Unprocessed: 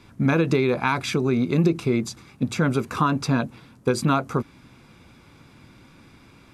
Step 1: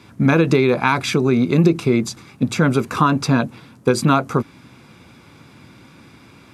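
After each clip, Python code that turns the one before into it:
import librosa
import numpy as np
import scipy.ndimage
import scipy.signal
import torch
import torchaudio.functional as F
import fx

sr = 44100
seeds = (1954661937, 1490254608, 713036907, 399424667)

y = scipy.signal.sosfilt(scipy.signal.butter(2, 84.0, 'highpass', fs=sr, output='sos'), x)
y = F.gain(torch.from_numpy(y), 5.5).numpy()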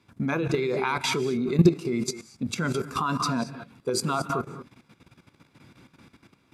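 y = fx.rev_gated(x, sr, seeds[0], gate_ms=250, shape='rising', drr_db=8.5)
y = fx.noise_reduce_blind(y, sr, reduce_db=7)
y = fx.level_steps(y, sr, step_db=13)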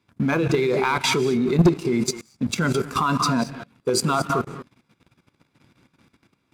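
y = fx.leveller(x, sr, passes=2)
y = F.gain(torch.from_numpy(y), -2.0).numpy()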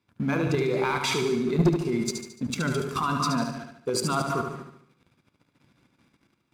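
y = fx.echo_feedback(x, sr, ms=73, feedback_pct=48, wet_db=-6)
y = F.gain(torch.from_numpy(y), -6.0).numpy()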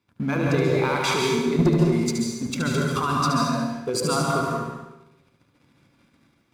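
y = fx.rev_plate(x, sr, seeds[1], rt60_s=0.79, hf_ratio=0.8, predelay_ms=120, drr_db=0.5)
y = F.gain(torch.from_numpy(y), 1.0).numpy()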